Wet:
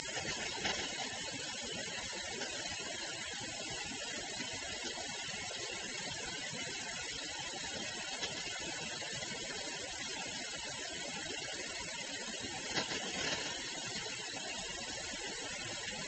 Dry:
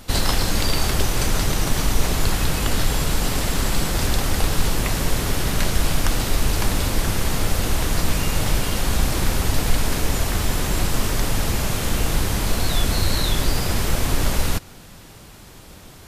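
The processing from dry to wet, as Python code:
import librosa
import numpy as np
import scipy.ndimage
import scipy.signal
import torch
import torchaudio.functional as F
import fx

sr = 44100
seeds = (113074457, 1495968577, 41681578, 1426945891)

p1 = fx.delta_mod(x, sr, bps=32000, step_db=-14.5)
p2 = fx.highpass(p1, sr, hz=610.0, slope=6)
p3 = fx.dereverb_blind(p2, sr, rt60_s=0.66)
p4 = fx.spec_gate(p3, sr, threshold_db=-20, keep='weak')
p5 = scipy.signal.sosfilt(scipy.signal.bessel(4, 3700.0, 'lowpass', norm='mag', fs=sr, output='sos'), p4)
p6 = fx.peak_eq(p5, sr, hz=1200.0, db=-12.5, octaves=0.32)
p7 = fx.notch_comb(p6, sr, f0_hz=1200.0)
p8 = p7 + fx.echo_single(p7, sr, ms=138, db=-11.0, dry=0)
p9 = fx.env_flatten(p8, sr, amount_pct=50)
y = p9 * librosa.db_to_amplitude(7.5)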